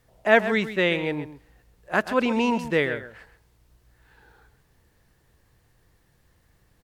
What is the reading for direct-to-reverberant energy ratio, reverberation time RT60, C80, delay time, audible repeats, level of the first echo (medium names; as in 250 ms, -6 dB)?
no reverb, no reverb, no reverb, 131 ms, 1, -12.5 dB